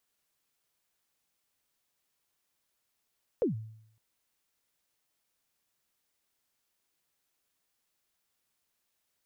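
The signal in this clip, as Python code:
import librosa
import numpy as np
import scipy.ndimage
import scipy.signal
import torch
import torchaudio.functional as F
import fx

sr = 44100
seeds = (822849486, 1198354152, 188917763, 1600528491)

y = fx.drum_kick(sr, seeds[0], length_s=0.56, level_db=-22, start_hz=540.0, end_hz=110.0, sweep_ms=126.0, decay_s=0.71, click=False)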